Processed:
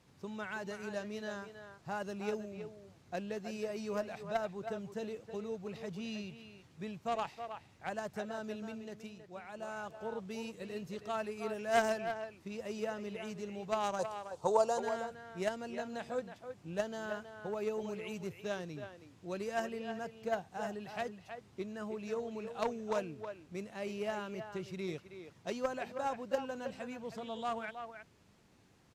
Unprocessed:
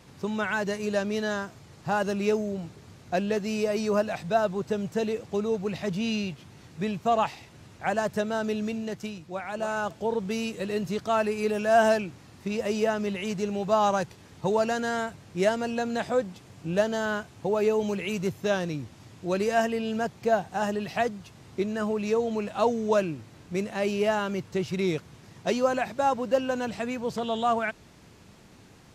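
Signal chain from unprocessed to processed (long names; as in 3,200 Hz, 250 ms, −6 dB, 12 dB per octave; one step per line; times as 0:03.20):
harmonic generator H 3 −10 dB, 5 −25 dB, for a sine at −10 dBFS
0:13.99–0:14.80: octave-band graphic EQ 250/500/1,000/2,000/4,000/8,000 Hz −5/+9/+11/−11/+3/+11 dB
far-end echo of a speakerphone 320 ms, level −8 dB
level −4 dB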